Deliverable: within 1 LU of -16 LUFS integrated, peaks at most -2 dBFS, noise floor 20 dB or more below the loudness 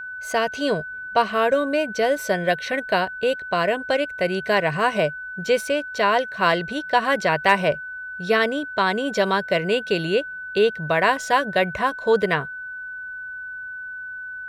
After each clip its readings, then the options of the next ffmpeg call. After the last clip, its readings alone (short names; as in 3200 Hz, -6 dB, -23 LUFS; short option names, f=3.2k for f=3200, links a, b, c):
steady tone 1500 Hz; tone level -31 dBFS; loudness -22.0 LUFS; peak -2.5 dBFS; loudness target -16.0 LUFS
-> -af "bandreject=f=1.5k:w=30"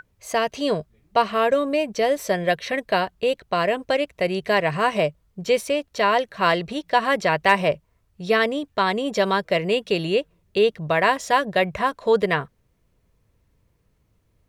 steady tone none; loudness -22.0 LUFS; peak -3.0 dBFS; loudness target -16.0 LUFS
-> -af "volume=6dB,alimiter=limit=-2dB:level=0:latency=1"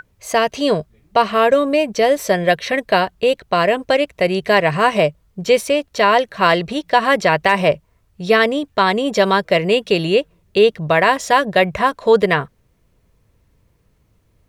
loudness -16.5 LUFS; peak -2.0 dBFS; noise floor -60 dBFS